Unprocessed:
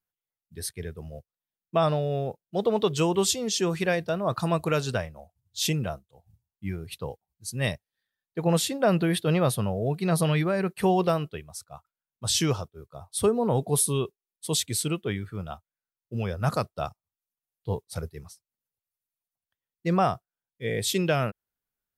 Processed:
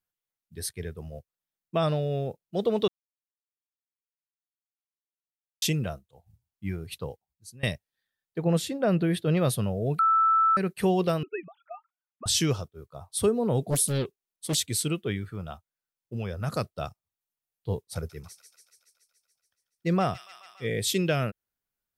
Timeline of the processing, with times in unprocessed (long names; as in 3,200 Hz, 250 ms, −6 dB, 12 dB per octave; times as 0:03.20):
0:02.88–0:05.62: silence
0:07.02–0:07.63: fade out, to −22.5 dB
0:08.38–0:09.37: high-shelf EQ 2,300 Hz −8 dB
0:09.99–0:10.57: beep over 1,320 Hz −15 dBFS
0:11.23–0:12.26: three sine waves on the formant tracks
0:13.70–0:14.58: highs frequency-modulated by the lows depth 0.96 ms
0:15.33–0:16.55: downward compressor 1.5 to 1, threshold −32 dBFS
0:17.95–0:20.68: delay with a high-pass on its return 142 ms, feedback 71%, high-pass 2,700 Hz, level −6 dB
whole clip: dynamic equaliser 920 Hz, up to −7 dB, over −42 dBFS, Q 1.5